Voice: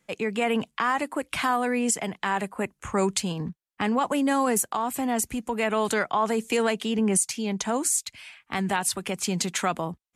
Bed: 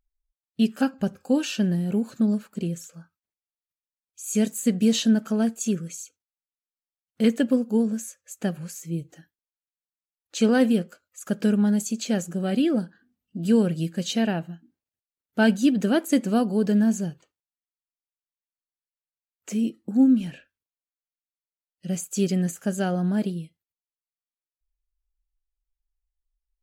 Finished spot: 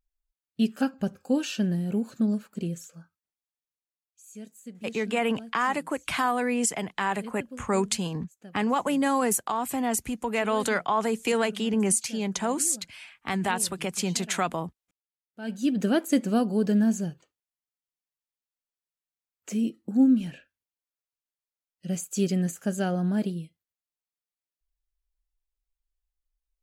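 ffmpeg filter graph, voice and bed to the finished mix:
ffmpeg -i stem1.wav -i stem2.wav -filter_complex "[0:a]adelay=4750,volume=-1dB[link_01];[1:a]volume=15.5dB,afade=type=out:start_time=3.52:duration=0.81:silence=0.133352,afade=type=in:start_time=15.42:duration=0.4:silence=0.11885[link_02];[link_01][link_02]amix=inputs=2:normalize=0" out.wav

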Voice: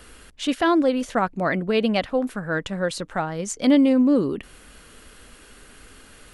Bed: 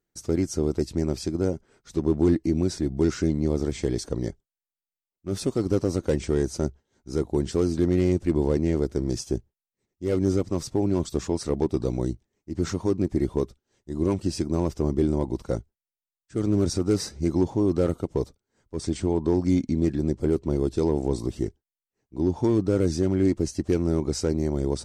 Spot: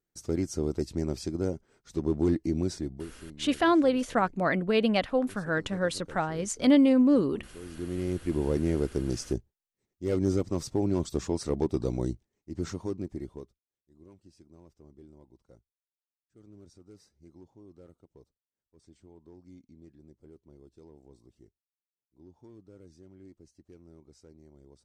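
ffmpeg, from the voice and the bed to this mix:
ffmpeg -i stem1.wav -i stem2.wav -filter_complex "[0:a]adelay=3000,volume=-3.5dB[link_01];[1:a]volume=14dB,afade=type=out:start_time=2.73:duration=0.35:silence=0.133352,afade=type=in:start_time=7.6:duration=1.03:silence=0.112202,afade=type=out:start_time=12.1:duration=1.52:silence=0.0473151[link_02];[link_01][link_02]amix=inputs=2:normalize=0" out.wav

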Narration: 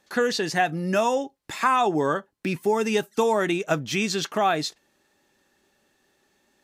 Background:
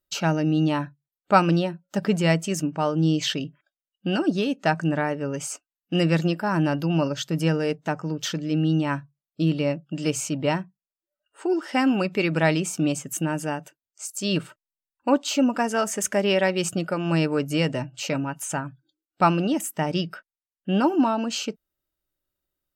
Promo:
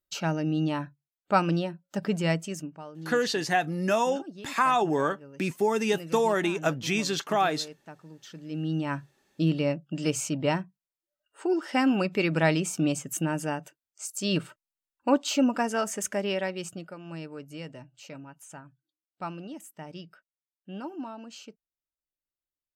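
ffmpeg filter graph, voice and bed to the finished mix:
ffmpeg -i stem1.wav -i stem2.wav -filter_complex "[0:a]adelay=2950,volume=-2.5dB[link_01];[1:a]volume=11.5dB,afade=type=out:start_time=2.32:duration=0.52:silence=0.199526,afade=type=in:start_time=8.27:duration=0.91:silence=0.141254,afade=type=out:start_time=15.46:duration=1.52:silence=0.188365[link_02];[link_01][link_02]amix=inputs=2:normalize=0" out.wav

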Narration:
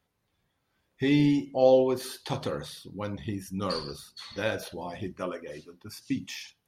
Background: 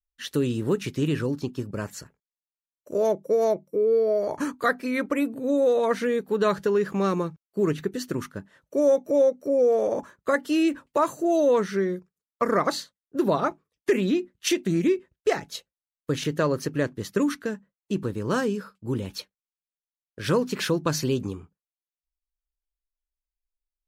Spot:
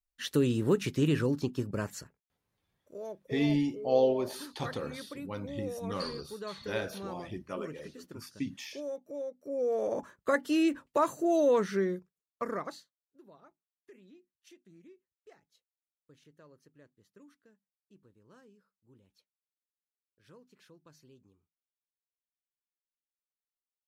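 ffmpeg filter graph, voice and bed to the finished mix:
ffmpeg -i stem1.wav -i stem2.wav -filter_complex "[0:a]adelay=2300,volume=-5dB[link_01];[1:a]volume=12dB,afade=type=out:start_time=1.73:duration=0.97:silence=0.149624,afade=type=in:start_time=9.35:duration=0.76:silence=0.199526,afade=type=out:start_time=11.85:duration=1.09:silence=0.0334965[link_02];[link_01][link_02]amix=inputs=2:normalize=0" out.wav

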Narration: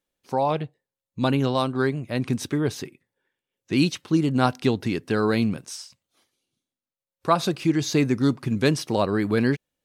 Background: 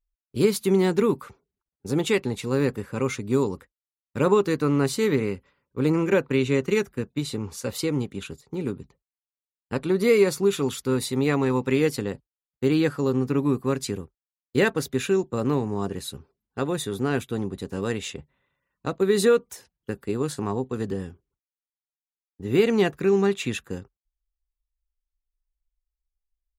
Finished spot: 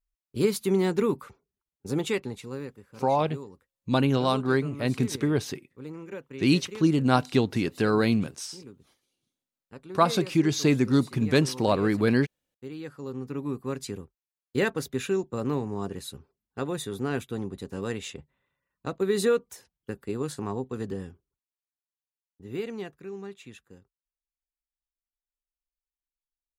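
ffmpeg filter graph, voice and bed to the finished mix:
ffmpeg -i stem1.wav -i stem2.wav -filter_complex "[0:a]adelay=2700,volume=-1dB[link_01];[1:a]volume=10dB,afade=type=out:start_time=1.93:duration=0.79:silence=0.188365,afade=type=in:start_time=12.77:duration=1.46:silence=0.211349,afade=type=out:start_time=21.11:duration=1.87:silence=0.199526[link_02];[link_01][link_02]amix=inputs=2:normalize=0" out.wav

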